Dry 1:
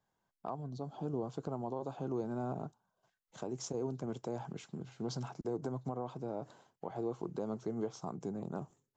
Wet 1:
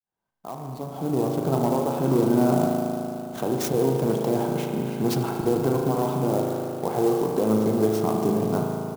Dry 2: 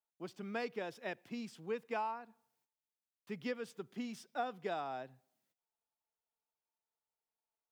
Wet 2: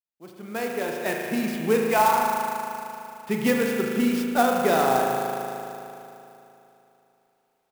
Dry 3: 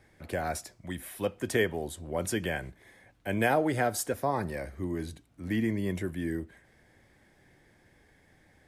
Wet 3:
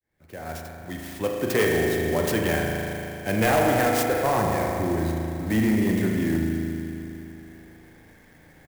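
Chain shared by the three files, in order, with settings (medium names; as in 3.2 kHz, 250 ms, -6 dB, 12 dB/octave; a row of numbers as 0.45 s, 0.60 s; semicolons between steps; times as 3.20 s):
fade-in on the opening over 1.60 s; resampled via 32 kHz; spring tank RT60 3 s, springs 37 ms, chirp 40 ms, DRR -0.5 dB; in parallel at -6.5 dB: sine folder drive 9 dB, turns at -11 dBFS; on the sum: sampling jitter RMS 0.033 ms; normalise loudness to -24 LUFS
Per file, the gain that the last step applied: +4.5 dB, +7.0 dB, -3.5 dB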